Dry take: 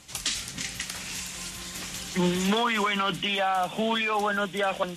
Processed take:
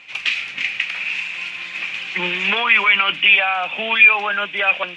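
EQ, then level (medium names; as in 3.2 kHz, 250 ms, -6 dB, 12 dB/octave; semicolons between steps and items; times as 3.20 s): high-pass 800 Hz 6 dB/octave; resonant low-pass 2.5 kHz, resonance Q 7.5; +4.5 dB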